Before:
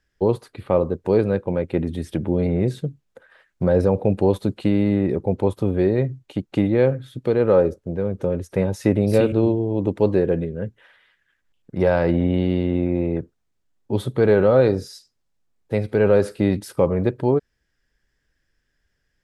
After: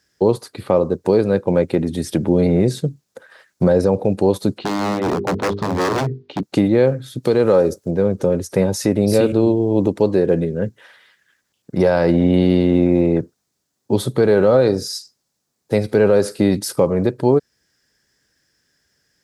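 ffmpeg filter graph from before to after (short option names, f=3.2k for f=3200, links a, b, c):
-filter_complex "[0:a]asettb=1/sr,asplit=3[a][b][c];[a]atrim=end=4.584[d];[b]atrim=start=4.58:end=6.43,asetpts=PTS-STARTPTS,afade=t=in:d=0.004:c=qsin,afade=t=out:st=1.846:d=0.004:c=qsin,lowpass=f=3.8k:w=0.5412,lowpass=f=3.8k:w=1.3066,bandreject=f=50:t=h:w=6,bandreject=f=100:t=h:w=6,bandreject=f=150:t=h:w=6,bandreject=f=200:t=h:w=6,bandreject=f=250:t=h:w=6,bandreject=f=300:t=h:w=6,bandreject=f=350:t=h:w=6,bandreject=f=400:t=h:w=6,bandreject=f=450:t=h:w=6,aeval=exprs='0.0944*(abs(mod(val(0)/0.0944+3,4)-2)-1)':c=same[e];[c]atrim=start=6.426[f];[d][e]acrossfade=d=0.004:c1=hsin:c2=qsin[g];[g][f]acrossfade=d=0.004:c1=qsin:c2=hsin,asettb=1/sr,asplit=3[h][i][j];[h]atrim=end=7.234[k];[i]atrim=start=7.23:end=7.91,asetpts=PTS-STARTPTS,afade=t=in:d=0.004:c=qsin,afade=t=out:st=0.676:d=0.004:c=qsin,highshelf=f=4.1k:g=8,acompressor=threshold=-19dB:ratio=2:attack=3.2:release=140:knee=1:detection=peak[l];[j]atrim=start=7.906[m];[k][l]acrossfade=d=0.004:c1=hsin:c2=qsin[n];[n][m]acrossfade=d=0.004:c1=qsin:c2=hsin,highpass=120,highshelf=f=3.8k:t=q:w=1.5:g=6.5,alimiter=limit=-12dB:level=0:latency=1:release=378,volume=7.5dB"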